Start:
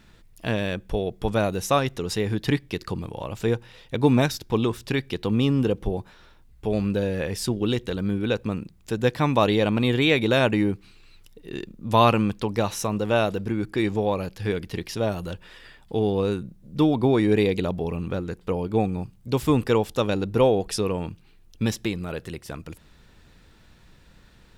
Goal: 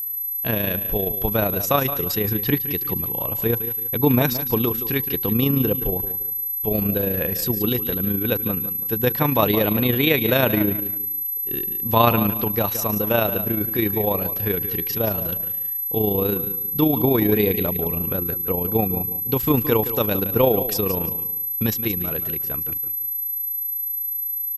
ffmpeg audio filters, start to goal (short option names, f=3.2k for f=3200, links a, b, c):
-af "agate=range=-11dB:threshold=-41dB:ratio=16:detection=peak,aeval=exprs='val(0)+0.0501*sin(2*PI*12000*n/s)':c=same,aecho=1:1:167|334|501:0.251|0.0754|0.0226,tremolo=f=28:d=0.462,volume=3dB"